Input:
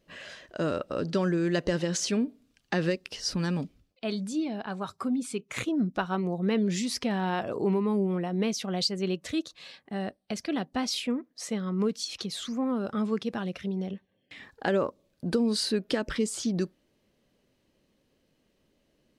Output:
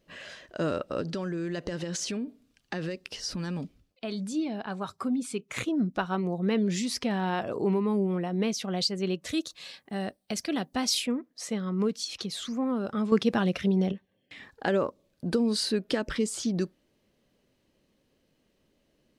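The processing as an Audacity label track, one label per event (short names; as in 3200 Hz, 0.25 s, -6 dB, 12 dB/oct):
1.010000	4.240000	compressor, threshold -29 dBFS
9.270000	11.060000	high shelf 5600 Hz +10.5 dB
13.120000	13.920000	gain +7 dB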